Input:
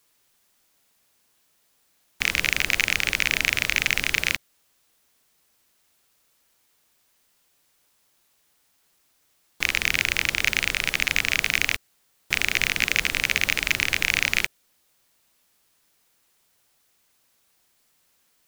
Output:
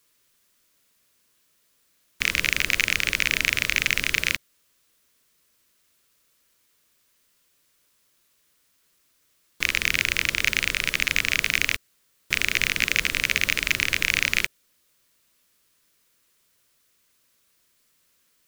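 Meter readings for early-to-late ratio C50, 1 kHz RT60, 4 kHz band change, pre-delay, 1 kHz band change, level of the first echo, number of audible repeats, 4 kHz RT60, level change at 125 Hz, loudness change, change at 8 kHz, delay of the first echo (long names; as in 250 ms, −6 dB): no reverb audible, no reverb audible, 0.0 dB, no reverb audible, −2.0 dB, no echo audible, no echo audible, no reverb audible, 0.0 dB, 0.0 dB, 0.0 dB, no echo audible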